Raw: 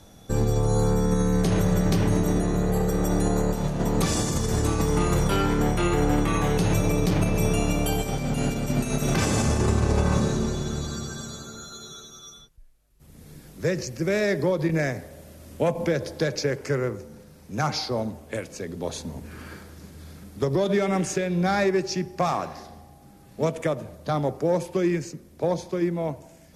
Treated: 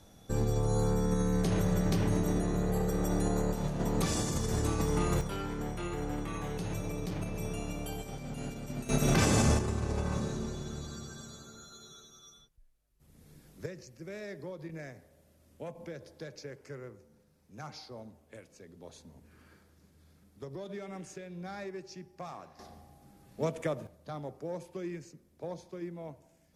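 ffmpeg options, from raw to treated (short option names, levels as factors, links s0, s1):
-af "asetnsamples=n=441:p=0,asendcmd='5.21 volume volume -14dB;8.89 volume volume -2.5dB;9.59 volume volume -11dB;13.66 volume volume -19dB;22.59 volume volume -7.5dB;23.87 volume volume -15.5dB',volume=0.447"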